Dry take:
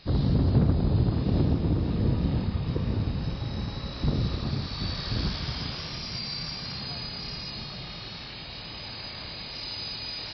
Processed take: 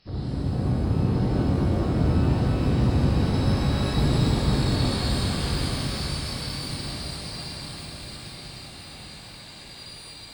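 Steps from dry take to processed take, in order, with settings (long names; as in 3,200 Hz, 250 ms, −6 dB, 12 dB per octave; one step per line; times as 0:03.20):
source passing by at 0:03.64, 13 m/s, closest 16 metres
delay that swaps between a low-pass and a high-pass 499 ms, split 2,100 Hz, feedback 65%, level −3 dB
reverb with rising layers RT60 2.6 s, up +12 semitones, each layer −8 dB, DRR −5 dB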